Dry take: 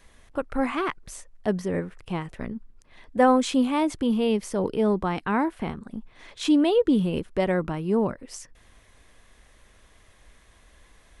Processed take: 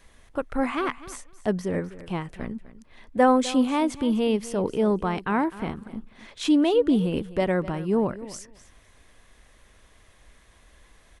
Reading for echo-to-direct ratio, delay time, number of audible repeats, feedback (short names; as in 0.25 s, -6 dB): -16.5 dB, 0.253 s, 2, 15%